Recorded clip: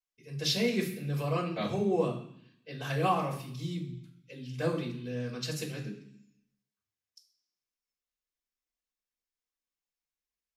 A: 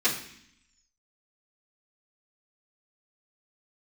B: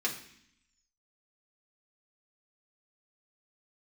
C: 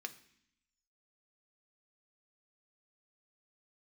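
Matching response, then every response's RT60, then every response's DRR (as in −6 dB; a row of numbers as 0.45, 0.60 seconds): A; 0.65, 0.65, 0.65 seconds; −11.5, −2.5, 7.0 decibels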